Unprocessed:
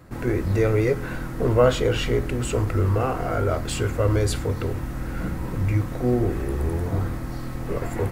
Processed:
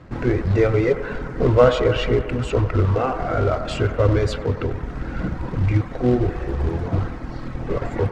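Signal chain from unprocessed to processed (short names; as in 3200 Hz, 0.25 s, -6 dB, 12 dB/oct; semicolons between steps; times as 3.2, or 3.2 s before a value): reverb removal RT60 1.1 s; in parallel at -7 dB: companded quantiser 4-bit; on the sum: air absorption 150 m; band-limited delay 95 ms, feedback 74%, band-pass 990 Hz, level -9.5 dB; gain +1.5 dB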